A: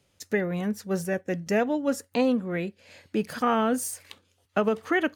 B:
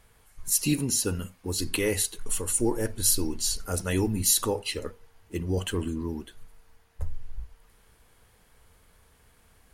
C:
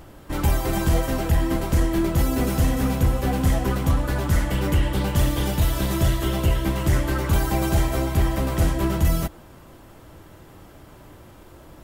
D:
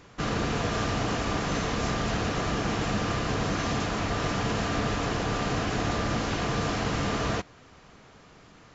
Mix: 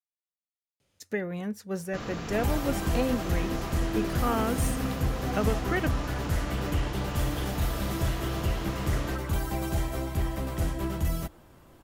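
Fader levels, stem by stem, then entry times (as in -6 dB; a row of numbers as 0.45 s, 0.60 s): -5.0 dB, mute, -8.5 dB, -9.0 dB; 0.80 s, mute, 2.00 s, 1.75 s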